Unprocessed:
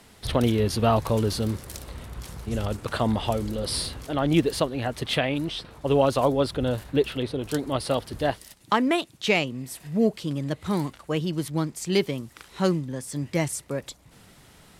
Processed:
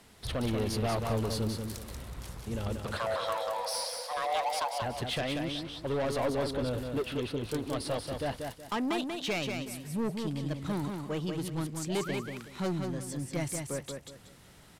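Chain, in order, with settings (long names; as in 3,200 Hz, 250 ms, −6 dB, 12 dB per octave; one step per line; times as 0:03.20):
0:02.97–0:04.82: frequency shifter +440 Hz
soft clipping −22 dBFS, distortion −9 dB
0:11.88–0:12.19: sound drawn into the spectrogram rise 530–2,700 Hz −38 dBFS
repeating echo 186 ms, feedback 29%, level −5 dB
level −5 dB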